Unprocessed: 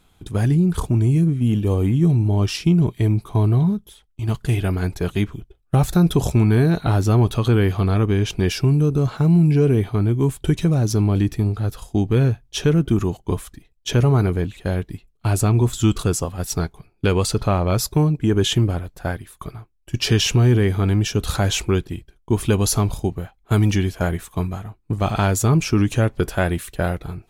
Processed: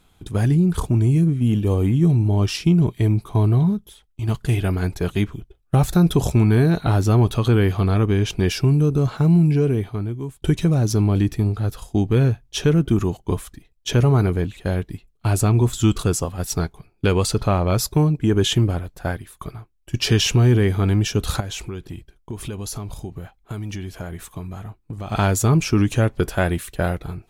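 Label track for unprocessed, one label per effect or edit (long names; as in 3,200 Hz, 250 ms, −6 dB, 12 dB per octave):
9.320000	10.420000	fade out, to −16.5 dB
21.400000	25.120000	downward compressor 4 to 1, threshold −28 dBFS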